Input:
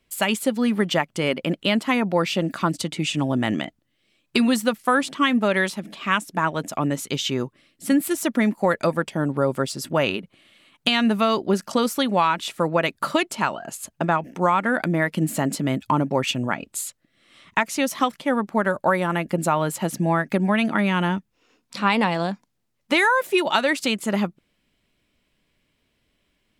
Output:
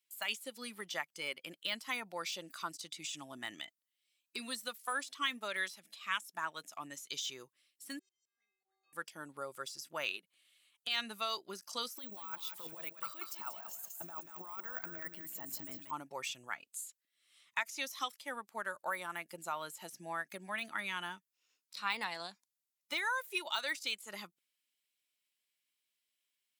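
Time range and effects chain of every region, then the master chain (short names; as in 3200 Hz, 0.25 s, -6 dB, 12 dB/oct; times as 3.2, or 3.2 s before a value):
7.99–8.93 steep low-pass 6800 Hz 72 dB/oct + metallic resonator 380 Hz, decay 0.84 s, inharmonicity 0.008 + auto swell 0.683 s
11.96–15.91 negative-ratio compressor -23 dBFS, ratio -0.5 + feedback echo 0.185 s, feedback 30%, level -7.5 dB + careless resampling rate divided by 2×, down filtered, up hold
whole clip: differentiator; de-esser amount 80%; spectral noise reduction 7 dB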